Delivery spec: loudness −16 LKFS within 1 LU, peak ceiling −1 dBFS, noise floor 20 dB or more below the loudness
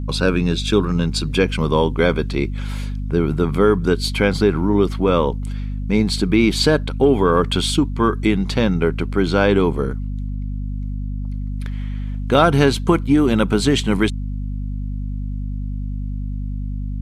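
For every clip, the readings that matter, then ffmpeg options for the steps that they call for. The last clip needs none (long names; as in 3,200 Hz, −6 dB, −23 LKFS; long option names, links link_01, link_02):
mains hum 50 Hz; hum harmonics up to 250 Hz; level of the hum −22 dBFS; integrated loudness −19.5 LKFS; sample peak −1.5 dBFS; target loudness −16.0 LKFS
→ -af "bandreject=frequency=50:width_type=h:width=6,bandreject=frequency=100:width_type=h:width=6,bandreject=frequency=150:width_type=h:width=6,bandreject=frequency=200:width_type=h:width=6,bandreject=frequency=250:width_type=h:width=6"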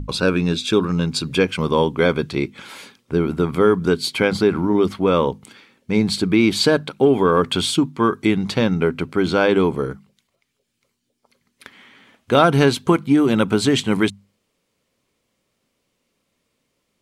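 mains hum none found; integrated loudness −18.5 LKFS; sample peak −1.5 dBFS; target loudness −16.0 LKFS
→ -af "volume=2.5dB,alimiter=limit=-1dB:level=0:latency=1"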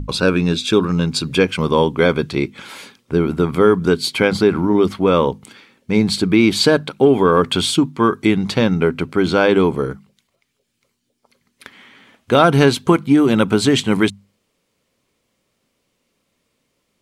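integrated loudness −16.0 LKFS; sample peak −1.0 dBFS; background noise floor −70 dBFS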